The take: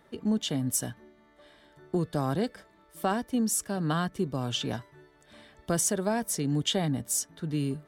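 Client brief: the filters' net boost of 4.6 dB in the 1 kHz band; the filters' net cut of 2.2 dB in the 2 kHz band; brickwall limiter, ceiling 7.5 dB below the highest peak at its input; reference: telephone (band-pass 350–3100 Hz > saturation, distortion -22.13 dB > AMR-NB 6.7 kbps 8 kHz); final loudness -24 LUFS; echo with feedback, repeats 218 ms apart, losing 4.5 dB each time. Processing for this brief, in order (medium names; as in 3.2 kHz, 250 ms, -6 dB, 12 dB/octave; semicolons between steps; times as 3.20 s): peaking EQ 1 kHz +8 dB; peaking EQ 2 kHz -6.5 dB; peak limiter -19 dBFS; band-pass 350–3100 Hz; feedback delay 218 ms, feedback 60%, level -4.5 dB; saturation -21 dBFS; trim +12.5 dB; AMR-NB 6.7 kbps 8 kHz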